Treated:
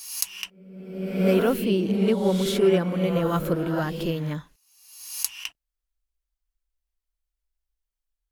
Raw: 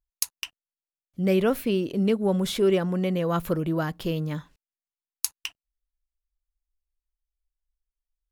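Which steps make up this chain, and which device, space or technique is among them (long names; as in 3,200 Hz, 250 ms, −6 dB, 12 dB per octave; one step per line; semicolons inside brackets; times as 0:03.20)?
reverse reverb (reversed playback; convolution reverb RT60 1.2 s, pre-delay 17 ms, DRR 2.5 dB; reversed playback)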